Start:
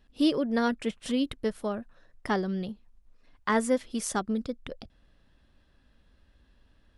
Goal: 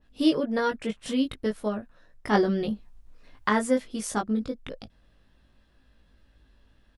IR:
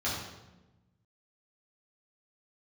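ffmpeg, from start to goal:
-filter_complex "[0:a]asplit=2[a][b];[b]adelay=19,volume=-3dB[c];[a][c]amix=inputs=2:normalize=0,asplit=3[d][e][f];[d]afade=t=out:st=2.33:d=0.02[g];[e]acontrast=64,afade=t=in:st=2.33:d=0.02,afade=t=out:st=3.48:d=0.02[h];[f]afade=t=in:st=3.48:d=0.02[i];[g][h][i]amix=inputs=3:normalize=0,adynamicequalizer=threshold=0.00631:dfrequency=2400:dqfactor=0.7:tfrequency=2400:tqfactor=0.7:attack=5:release=100:ratio=0.375:range=2:mode=cutabove:tftype=highshelf"

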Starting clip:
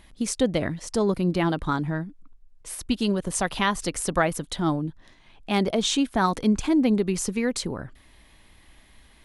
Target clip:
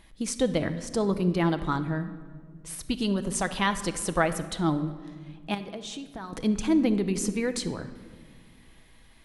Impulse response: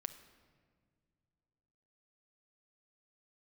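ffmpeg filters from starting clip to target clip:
-filter_complex "[0:a]asettb=1/sr,asplit=3[a][b][c];[a]atrim=end=5.544[d];[b]atrim=start=5.54:end=6.33,asetpts=PTS-STARTPTS,afade=t=in:d=0.004:c=qsin,afade=t=out:st=0.786:d=0.004:c=qsin,acompressor=threshold=-32dB:ratio=16[e];[c]atrim=start=6.326[f];[d][e]acrossfade=d=0.004:c1=hsin:c2=qsin[g];[g][f]acrossfade=d=0.004:c1=qsin:c2=hsin[h];[1:a]atrim=start_sample=2205[i];[h][i]afir=irnorm=-1:irlink=0"

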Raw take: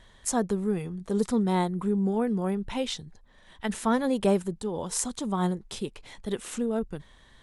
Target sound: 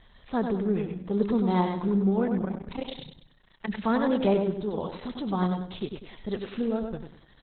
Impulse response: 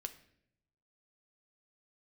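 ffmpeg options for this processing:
-filter_complex "[0:a]asettb=1/sr,asplit=3[a][b][c];[a]atrim=end=2.414[d];[b]atrim=start=2.41:end=3.68,asetpts=PTS-STARTPTS,afade=t=in:d=0.004:c=qsin,afade=t=out:st=1.266:d=0.004:c=qsin,tremolo=f=29:d=0.919[e];[c]atrim=start=3.676[f];[d][e]acrossfade=d=0.004:c1=hsin:c2=qsin[g];[g][f]acrossfade=d=0.004:c1=qsin:c2=hsin,aecho=1:1:98|196|294|392|490:0.531|0.207|0.0807|0.0315|0.0123" -ar 48000 -c:a libopus -b:a 8k

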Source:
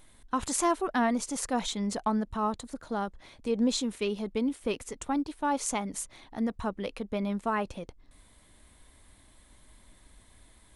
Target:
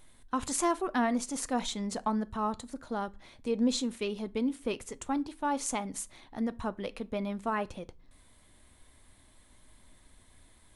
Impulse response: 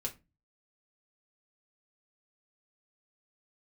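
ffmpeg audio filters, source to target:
-filter_complex "[0:a]asplit=2[a][b];[1:a]atrim=start_sample=2205,asetrate=29106,aresample=44100[c];[b][c]afir=irnorm=-1:irlink=0,volume=-14.5dB[d];[a][d]amix=inputs=2:normalize=0,volume=-3.5dB"

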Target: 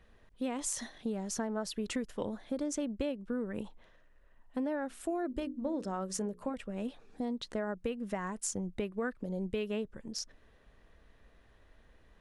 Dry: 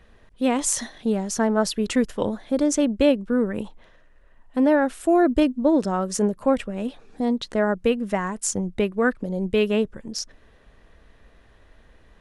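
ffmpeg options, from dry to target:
-filter_complex "[0:a]acompressor=threshold=-23dB:ratio=6,asettb=1/sr,asplit=3[a][b][c];[a]atrim=end=4.884[d];[b]atrim=start=4.88:end=6.54,asetpts=PTS-STARTPTS,afade=t=in:d=0.004:c=qsin,afade=t=out:st=1.656:d=0.004:c=qsin,bandreject=f=60:t=h:w=6,bandreject=f=120:t=h:w=6,bandreject=f=180:t=h:w=6,bandreject=f=240:t=h:w=6,bandreject=f=300:t=h:w=6,bandreject=f=360:t=h:w=6,bandreject=f=420:t=h:w=6,bandreject=f=480:t=h:w=6,bandreject=f=540:t=h:w=6[e];[c]atrim=start=6.536[f];[d][e]acrossfade=d=0.004:c1=hsin:c2=qsin[g];[g][f]acrossfade=d=0.004:c1=qsin:c2=hsin,volume=-8.5dB"

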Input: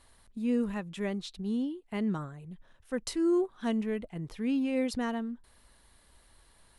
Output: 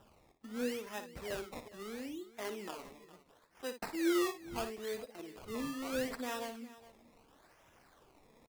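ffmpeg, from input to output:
-filter_complex "[0:a]highpass=f=320:w=0.5412,highpass=f=320:w=1.3066,asplit=2[a][b];[b]acompressor=threshold=-46dB:ratio=6,volume=0dB[c];[a][c]amix=inputs=2:normalize=0,atempo=0.8,acrusher=samples=20:mix=1:aa=0.000001:lfo=1:lforange=20:lforate=0.75,aphaser=in_gain=1:out_gain=1:delay=4.7:decay=0.34:speed=0.9:type=triangular,asplit=2[d][e];[e]aecho=0:1:57|411:0.316|0.133[f];[d][f]amix=inputs=2:normalize=0,volume=-6.5dB"

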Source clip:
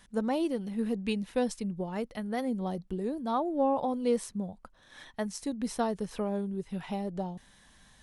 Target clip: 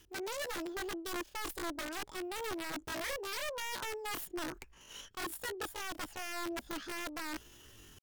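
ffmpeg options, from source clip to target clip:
-af "adynamicequalizer=threshold=0.00501:dfrequency=350:dqfactor=4.6:tfrequency=350:tqfactor=4.6:attack=5:release=100:ratio=0.375:range=2.5:mode=boostabove:tftype=bell,areverse,acompressor=threshold=-37dB:ratio=16,areverse,aeval=exprs='(mod(59.6*val(0)+1,2)-1)/59.6':c=same,asetrate=76340,aresample=44100,atempo=0.577676,volume=2.5dB"

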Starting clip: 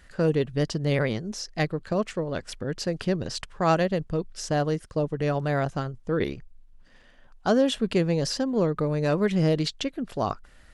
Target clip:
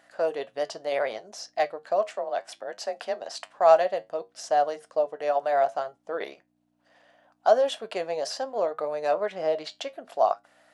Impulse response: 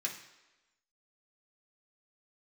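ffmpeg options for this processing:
-filter_complex "[0:a]asettb=1/sr,asplit=3[a][b][c];[a]atrim=end=9.114[d];[b]atrim=start=9.11:end=9.7,asetpts=PTS-STARTPTS,afade=t=in:d=0.004:c=qsin,afade=t=out:st=0.586:d=0.004:c=qsin,lowpass=f=3.3k:p=1[e];[c]atrim=start=9.696[f];[d][e]acrossfade=d=0.004:c1=hsin:c2=qsin[g];[g][f]acrossfade=d=0.004:c1=qsin:c2=hsin,flanger=delay=9:depth=1.7:regen=-70:speed=0.67:shape=triangular,aeval=exprs='val(0)+0.00447*(sin(2*PI*60*n/s)+sin(2*PI*2*60*n/s)/2+sin(2*PI*3*60*n/s)/3+sin(2*PI*4*60*n/s)/4+sin(2*PI*5*60*n/s)/5)':c=same,highpass=f=670:t=q:w=4.9,asettb=1/sr,asplit=3[h][i][j];[h]atrim=end=2.114[k];[i]atrim=start=2.11:end=3.37,asetpts=PTS-STARTPTS,afade=t=in:d=0.004:c=qsin,afade=t=out:st=1.256:d=0.004:c=qsin,afreqshift=38[l];[j]atrim=start=3.366[m];[k][l]acrossfade=d=0.004:c1=hsin:c2=qsin[n];[n][m]acrossfade=d=0.004:c1=qsin:c2=hsin"

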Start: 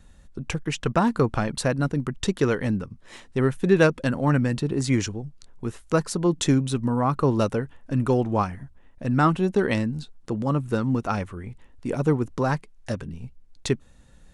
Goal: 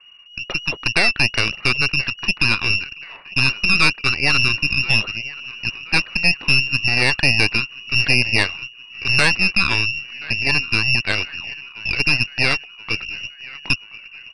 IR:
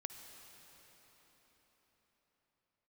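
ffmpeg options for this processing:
-filter_complex "[0:a]apsyclip=15dB,lowpass=f=2.5k:t=q:w=0.5098,lowpass=f=2.5k:t=q:w=0.6013,lowpass=f=2.5k:t=q:w=0.9,lowpass=f=2.5k:t=q:w=2.563,afreqshift=-2900,asplit=2[a][b];[b]aecho=0:1:1028|2056|3084|4112|5140:0.141|0.0777|0.0427|0.0235|0.0129[c];[a][c]amix=inputs=2:normalize=0,aeval=exprs='2.24*(cos(1*acos(clip(val(0)/2.24,-1,1)))-cos(1*PI/2))+0.0141*(cos(3*acos(clip(val(0)/2.24,-1,1)))-cos(3*PI/2))+0.794*(cos(4*acos(clip(val(0)/2.24,-1,1)))-cos(4*PI/2))+0.0251*(cos(8*acos(clip(val(0)/2.24,-1,1)))-cos(8*PI/2))':c=same,volume=-11.5dB"

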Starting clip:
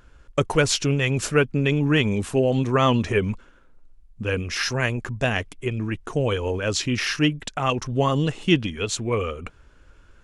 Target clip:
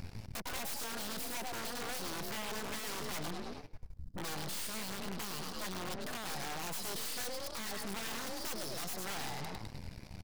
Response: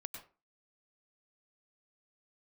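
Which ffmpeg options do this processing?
-filter_complex "[0:a]asetrate=72056,aresample=44100,atempo=0.612027,equalizer=f=100:t=o:w=0.33:g=8,equalizer=f=250:t=o:w=0.33:g=-8,equalizer=f=2.5k:t=o:w=0.33:g=-9,equalizer=f=5k:t=o:w=0.33:g=7,acrossover=split=360[a][b];[a]acompressor=mode=upward:threshold=-39dB:ratio=2.5[c];[c][b]amix=inputs=2:normalize=0,asplit=5[d][e][f][g][h];[e]adelay=103,afreqshift=35,volume=-9dB[i];[f]adelay=206,afreqshift=70,volume=-18.4dB[j];[g]adelay=309,afreqshift=105,volume=-27.7dB[k];[h]adelay=412,afreqshift=140,volume=-37.1dB[l];[d][i][j][k][l]amix=inputs=5:normalize=0,acompressor=threshold=-35dB:ratio=3,lowshelf=f=63:g=-7,aeval=exprs='(mod(31.6*val(0)+1,2)-1)/31.6':c=same,aeval=exprs='(tanh(70.8*val(0)+0.25)-tanh(0.25))/70.8':c=same,bandreject=f=50:t=h:w=6,bandreject=f=100:t=h:w=6,aeval=exprs='0.02*(cos(1*acos(clip(val(0)/0.02,-1,1)))-cos(1*PI/2))+0.00447*(cos(8*acos(clip(val(0)/0.02,-1,1)))-cos(8*PI/2))':c=same,volume=1dB"

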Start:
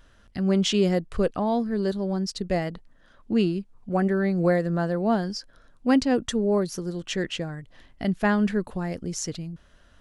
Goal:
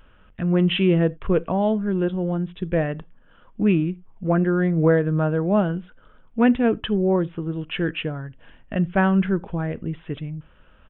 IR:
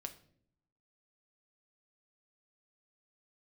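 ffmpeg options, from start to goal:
-filter_complex "[0:a]aresample=8000,aresample=44100,asplit=2[a][b];[1:a]atrim=start_sample=2205,atrim=end_sample=3969[c];[b][c]afir=irnorm=-1:irlink=0,volume=-7dB[d];[a][d]amix=inputs=2:normalize=0,asetrate=40517,aresample=44100,volume=1dB"

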